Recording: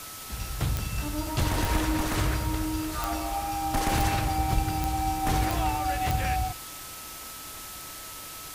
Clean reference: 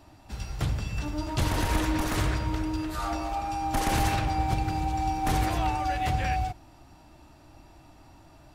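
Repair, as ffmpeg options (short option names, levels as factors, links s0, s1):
-filter_complex "[0:a]adeclick=t=4,bandreject=f=1300:w=30,asplit=3[s0][s1][s2];[s0]afade=t=out:st=4.54:d=0.02[s3];[s1]highpass=f=140:w=0.5412,highpass=f=140:w=1.3066,afade=t=in:st=4.54:d=0.02,afade=t=out:st=4.66:d=0.02[s4];[s2]afade=t=in:st=4.66:d=0.02[s5];[s3][s4][s5]amix=inputs=3:normalize=0,afwtdn=0.01"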